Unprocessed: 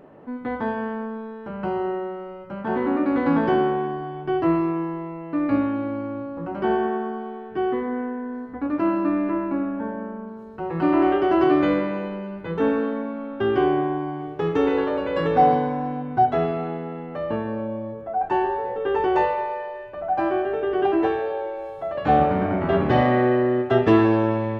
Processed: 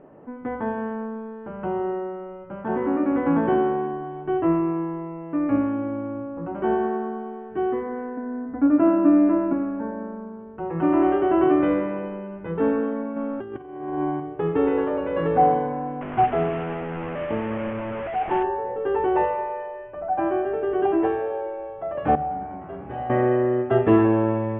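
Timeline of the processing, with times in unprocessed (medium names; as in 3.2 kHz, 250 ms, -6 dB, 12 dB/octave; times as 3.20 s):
8.17–9.53 s: small resonant body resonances 270/640/1400 Hz, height 10 dB
13.16–14.20 s: compressor with a negative ratio -27 dBFS, ratio -0.5
16.01–18.43 s: one-bit delta coder 16 kbps, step -22.5 dBFS
22.15–23.10 s: feedback comb 68 Hz, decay 0.98 s, mix 90%
whole clip: steep low-pass 3.2 kHz 48 dB/octave; treble shelf 2.1 kHz -10.5 dB; hum notches 50/100/150/200/250 Hz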